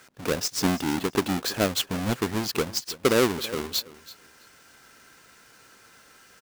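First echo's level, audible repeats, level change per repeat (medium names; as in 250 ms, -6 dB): -18.0 dB, 2, -15.5 dB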